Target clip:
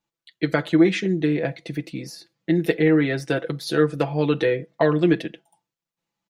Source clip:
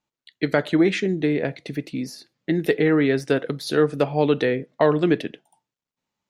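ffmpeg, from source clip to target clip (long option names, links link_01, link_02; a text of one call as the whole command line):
ffmpeg -i in.wav -af "aecho=1:1:6:0.69,volume=-2dB" out.wav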